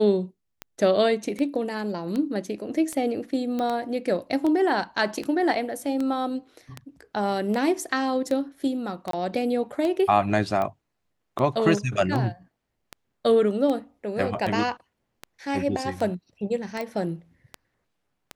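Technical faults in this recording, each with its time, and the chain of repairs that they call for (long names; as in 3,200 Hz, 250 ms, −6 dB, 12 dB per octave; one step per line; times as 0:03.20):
scratch tick 78 rpm −17 dBFS
0:03.59: click −17 dBFS
0:09.11–0:09.13: drop-out 23 ms
0:16.81: click −18 dBFS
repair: click removal
repair the gap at 0:09.11, 23 ms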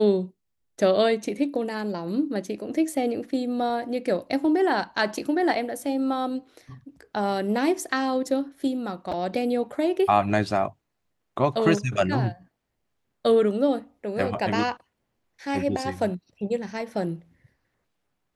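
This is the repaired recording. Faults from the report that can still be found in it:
none of them is left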